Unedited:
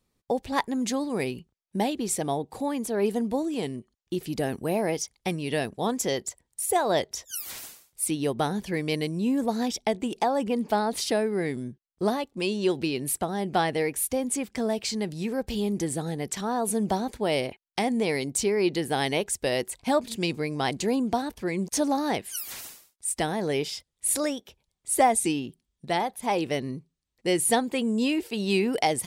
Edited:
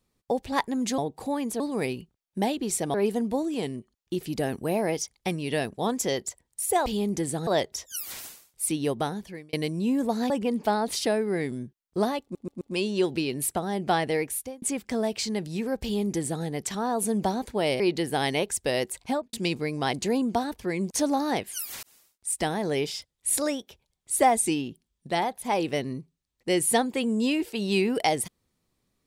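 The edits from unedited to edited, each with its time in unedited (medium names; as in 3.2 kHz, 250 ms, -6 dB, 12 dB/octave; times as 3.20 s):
2.32–2.94 s: move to 0.98 s
8.29–8.92 s: fade out
9.69–10.35 s: delete
12.27 s: stutter 0.13 s, 4 plays
13.88–14.28 s: fade out
15.49–16.10 s: copy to 6.86 s
17.46–18.58 s: delete
19.81–20.11 s: studio fade out
22.61–23.07 s: fade in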